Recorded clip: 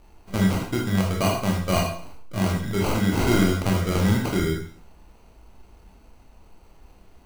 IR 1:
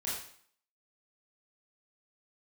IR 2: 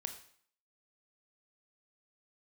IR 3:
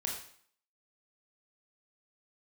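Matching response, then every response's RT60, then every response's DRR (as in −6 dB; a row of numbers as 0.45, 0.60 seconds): 3; 0.55, 0.55, 0.55 seconds; −8.0, 6.0, −1.5 decibels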